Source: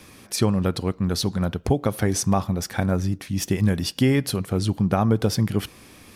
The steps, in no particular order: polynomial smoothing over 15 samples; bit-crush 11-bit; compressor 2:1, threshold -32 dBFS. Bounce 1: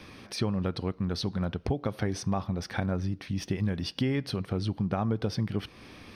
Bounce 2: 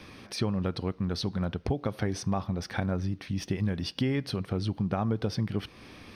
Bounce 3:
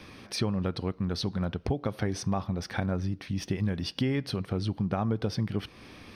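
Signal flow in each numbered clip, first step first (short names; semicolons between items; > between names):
bit-crush > compressor > polynomial smoothing; compressor > bit-crush > polynomial smoothing; bit-crush > polynomial smoothing > compressor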